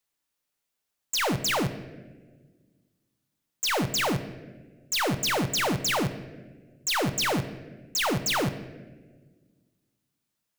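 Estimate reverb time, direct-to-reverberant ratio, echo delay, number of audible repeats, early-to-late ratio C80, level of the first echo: 1.5 s, 9.5 dB, no echo audible, no echo audible, 14.0 dB, no echo audible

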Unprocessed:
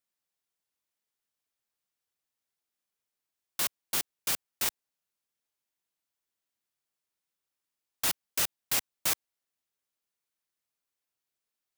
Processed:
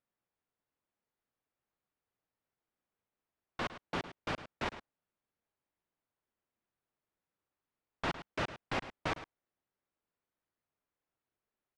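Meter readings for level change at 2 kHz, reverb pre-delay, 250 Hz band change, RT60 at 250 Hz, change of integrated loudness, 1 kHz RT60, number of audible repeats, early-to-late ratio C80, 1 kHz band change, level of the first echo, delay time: −1.5 dB, no reverb audible, +6.0 dB, no reverb audible, −9.5 dB, no reverb audible, 1, no reverb audible, +3.0 dB, −13.5 dB, 107 ms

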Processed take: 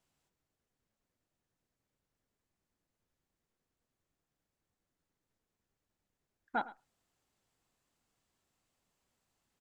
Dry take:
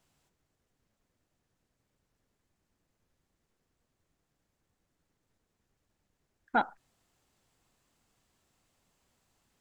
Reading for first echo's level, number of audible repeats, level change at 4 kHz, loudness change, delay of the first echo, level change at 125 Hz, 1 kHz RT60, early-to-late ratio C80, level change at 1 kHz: −18.5 dB, 1, −7.0 dB, −7.0 dB, 107 ms, can't be measured, no reverb audible, no reverb audible, −7.0 dB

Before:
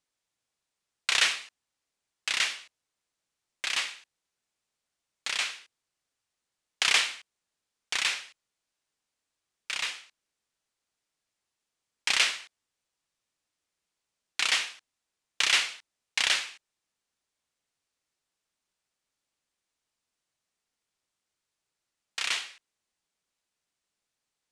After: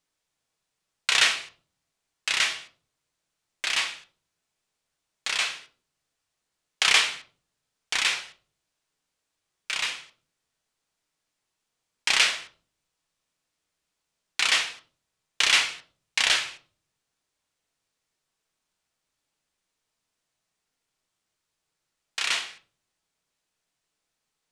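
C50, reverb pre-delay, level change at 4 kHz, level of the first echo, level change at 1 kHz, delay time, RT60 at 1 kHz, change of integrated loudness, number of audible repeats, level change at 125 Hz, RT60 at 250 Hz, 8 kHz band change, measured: 13.5 dB, 5 ms, +3.5 dB, no echo audible, +4.5 dB, no echo audible, 0.35 s, +3.5 dB, no echo audible, can't be measured, 0.65 s, +3.0 dB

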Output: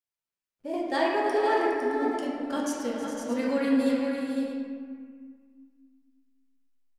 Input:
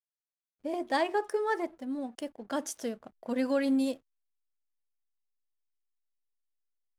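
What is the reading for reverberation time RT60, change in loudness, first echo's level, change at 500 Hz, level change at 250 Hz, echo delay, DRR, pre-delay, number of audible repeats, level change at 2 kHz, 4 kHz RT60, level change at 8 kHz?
1.9 s, +4.0 dB, −12.5 dB, +5.5 dB, +5.0 dB, 317 ms, −6.0 dB, 6 ms, 3, +5.0 dB, 1.1 s, +1.5 dB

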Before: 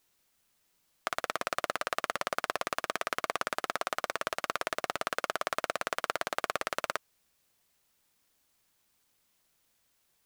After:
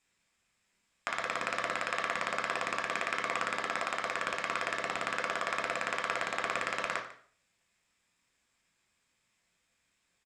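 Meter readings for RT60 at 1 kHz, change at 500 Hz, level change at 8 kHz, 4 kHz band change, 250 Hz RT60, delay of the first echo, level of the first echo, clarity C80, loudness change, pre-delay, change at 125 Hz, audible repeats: 0.50 s, −1.5 dB, −3.0 dB, −1.0 dB, 0.55 s, 148 ms, −17.5 dB, 12.5 dB, +0.5 dB, 8 ms, +1.5 dB, 1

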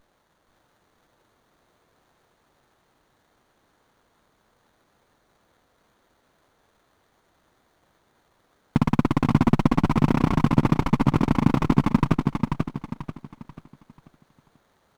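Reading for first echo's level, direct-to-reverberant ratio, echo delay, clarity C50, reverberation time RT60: −4.0 dB, no reverb audible, 488 ms, no reverb audible, no reverb audible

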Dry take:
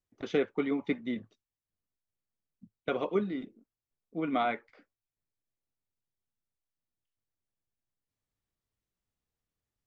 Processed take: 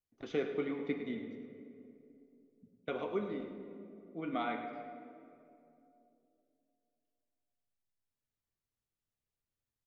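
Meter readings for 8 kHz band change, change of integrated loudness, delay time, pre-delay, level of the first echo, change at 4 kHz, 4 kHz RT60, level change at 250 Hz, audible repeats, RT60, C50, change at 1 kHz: can't be measured, −6.5 dB, 105 ms, 7 ms, −11.0 dB, −6.0 dB, 1.4 s, −5.5 dB, 1, 2.9 s, 5.5 dB, −6.0 dB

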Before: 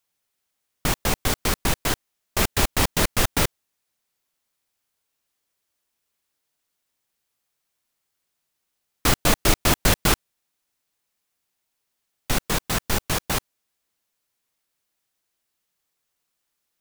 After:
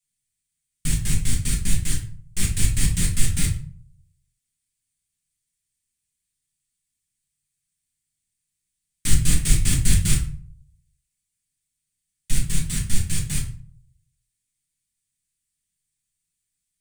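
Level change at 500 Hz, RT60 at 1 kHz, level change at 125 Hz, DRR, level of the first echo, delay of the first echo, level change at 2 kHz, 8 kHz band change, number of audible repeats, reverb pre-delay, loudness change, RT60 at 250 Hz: −18.0 dB, 0.45 s, +5.0 dB, −3.0 dB, no echo audible, no echo audible, −8.0 dB, +2.0 dB, no echo audible, 5 ms, −1.0 dB, 0.65 s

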